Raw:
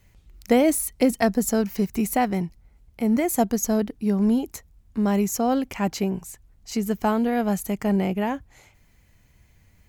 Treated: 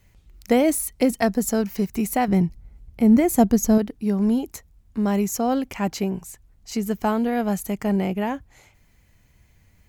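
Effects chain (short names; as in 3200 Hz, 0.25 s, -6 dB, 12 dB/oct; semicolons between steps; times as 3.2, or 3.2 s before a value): 2.28–3.78 low shelf 340 Hz +9.5 dB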